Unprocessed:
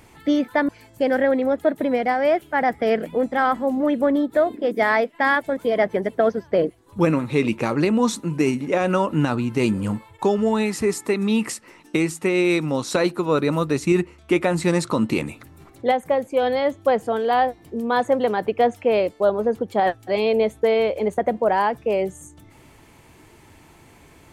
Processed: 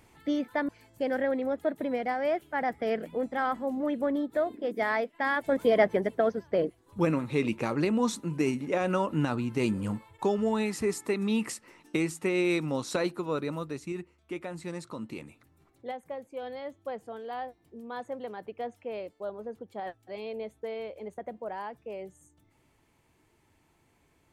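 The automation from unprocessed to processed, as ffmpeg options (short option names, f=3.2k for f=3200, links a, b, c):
-af "volume=-1dB,afade=t=in:st=5.35:d=0.22:silence=0.375837,afade=t=out:st=5.57:d=0.69:silence=0.473151,afade=t=out:st=12.76:d=1.18:silence=0.298538"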